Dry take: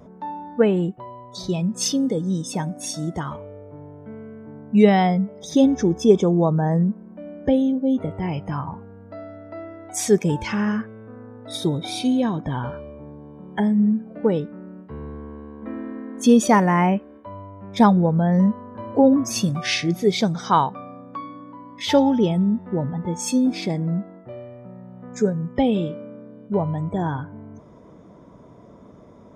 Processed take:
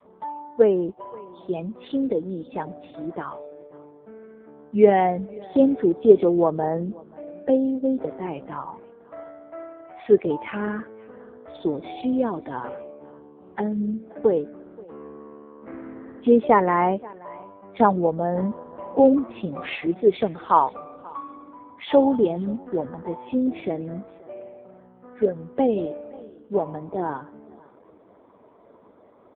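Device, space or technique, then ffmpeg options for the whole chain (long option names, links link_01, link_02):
satellite phone: -af "adynamicequalizer=threshold=0.0316:dfrequency=380:dqfactor=1:tfrequency=380:tqfactor=1:attack=5:release=100:ratio=0.375:range=2.5:mode=boostabove:tftype=bell,highpass=350,lowpass=3000,aecho=1:1:530:0.0708" -ar 8000 -c:a libopencore_amrnb -b:a 5150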